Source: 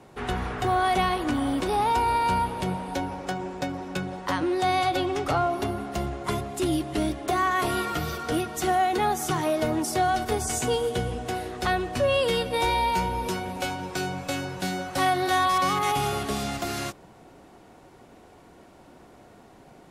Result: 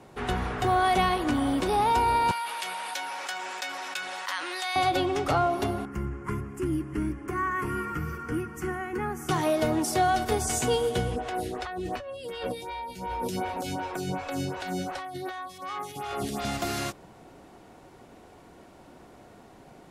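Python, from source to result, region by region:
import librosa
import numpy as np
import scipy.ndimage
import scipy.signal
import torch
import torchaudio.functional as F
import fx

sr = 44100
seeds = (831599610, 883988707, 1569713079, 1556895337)

y = fx.chain(x, sr, fx.highpass(hz=1500.0, slope=12),
    fx.env_flatten(amount_pct=70), at=(2.31, 4.76))
y = fx.chain(y, sr, fx.high_shelf(hz=2400.0, db=-10.5),
    fx.fixed_phaser(hz=1600.0, stages=4), at=(5.85, 9.29))
y = fx.chain(y, sr, fx.over_compress(threshold_db=-31.0, ratio=-1.0),
    fx.stagger_phaser(hz=2.7), at=(11.16, 16.45))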